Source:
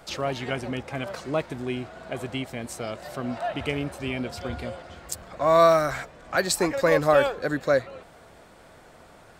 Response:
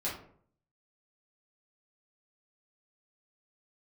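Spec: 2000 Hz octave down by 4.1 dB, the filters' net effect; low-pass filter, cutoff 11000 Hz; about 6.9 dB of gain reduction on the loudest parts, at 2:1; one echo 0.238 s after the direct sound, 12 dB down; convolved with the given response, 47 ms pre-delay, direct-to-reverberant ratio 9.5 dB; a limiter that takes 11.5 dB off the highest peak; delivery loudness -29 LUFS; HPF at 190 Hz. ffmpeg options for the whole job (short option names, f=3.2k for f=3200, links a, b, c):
-filter_complex "[0:a]highpass=190,lowpass=11k,equalizer=f=2k:t=o:g=-5.5,acompressor=threshold=-27dB:ratio=2,alimiter=limit=-21.5dB:level=0:latency=1,aecho=1:1:238:0.251,asplit=2[a][b];[1:a]atrim=start_sample=2205,adelay=47[c];[b][c]afir=irnorm=-1:irlink=0,volume=-14dB[d];[a][d]amix=inputs=2:normalize=0,volume=4dB"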